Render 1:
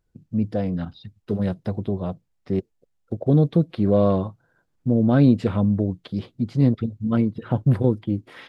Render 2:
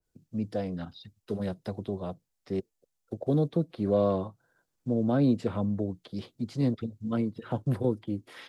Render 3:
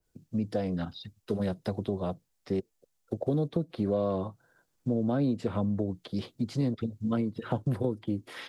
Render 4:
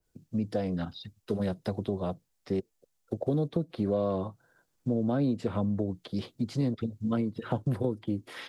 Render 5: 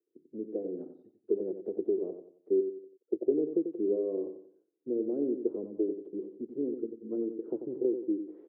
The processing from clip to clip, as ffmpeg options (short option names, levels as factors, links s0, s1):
-filter_complex "[0:a]bass=f=250:g=-6,treble=f=4000:g=9,acrossover=split=220|290|1000[s0][s1][s2][s3];[s3]alimiter=level_in=1.68:limit=0.0631:level=0:latency=1:release=136,volume=0.596[s4];[s0][s1][s2][s4]amix=inputs=4:normalize=0,adynamicequalizer=threshold=0.00891:dfrequency=1900:dqfactor=0.7:tfrequency=1900:tqfactor=0.7:attack=5:release=100:ratio=0.375:range=3:mode=cutabove:tftype=highshelf,volume=0.562"
-af "acompressor=threshold=0.0316:ratio=4,volume=1.68"
-af anull
-filter_complex "[0:a]asuperpass=centerf=370:order=4:qfactor=3.1,asplit=2[s0][s1];[s1]aecho=0:1:91|182|273|364:0.376|0.135|0.0487|0.0175[s2];[s0][s2]amix=inputs=2:normalize=0,volume=2.11"